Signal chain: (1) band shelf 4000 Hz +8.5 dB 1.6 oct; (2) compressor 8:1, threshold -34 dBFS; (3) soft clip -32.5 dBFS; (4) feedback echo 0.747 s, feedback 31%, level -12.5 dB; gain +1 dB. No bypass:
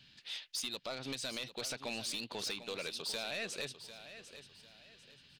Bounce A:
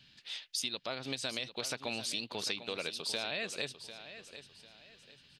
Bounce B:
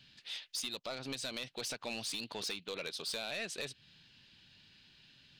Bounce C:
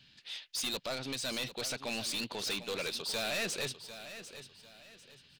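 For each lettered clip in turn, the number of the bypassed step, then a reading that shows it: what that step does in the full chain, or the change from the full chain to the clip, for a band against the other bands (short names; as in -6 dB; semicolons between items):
3, distortion -11 dB; 4, momentary loudness spread change -13 LU; 2, mean gain reduction 7.0 dB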